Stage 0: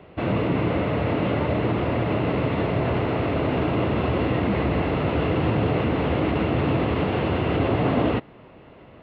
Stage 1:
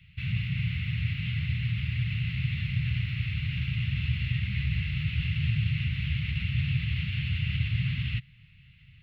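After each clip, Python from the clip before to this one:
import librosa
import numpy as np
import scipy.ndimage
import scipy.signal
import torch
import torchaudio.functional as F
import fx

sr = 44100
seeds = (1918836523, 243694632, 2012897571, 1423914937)

y = scipy.signal.sosfilt(scipy.signal.ellip(3, 1.0, 70, [140.0, 2300.0], 'bandstop', fs=sr, output='sos'), x)
y = fx.peak_eq(y, sr, hz=310.0, db=-9.0, octaves=0.7)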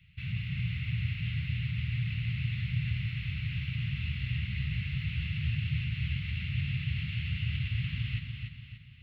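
y = fx.echo_feedback(x, sr, ms=291, feedback_pct=44, wet_db=-5.5)
y = y * librosa.db_to_amplitude(-5.0)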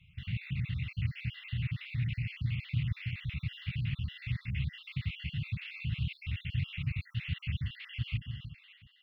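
y = fx.spec_dropout(x, sr, seeds[0], share_pct=51)
y = fx.doppler_dist(y, sr, depth_ms=0.21)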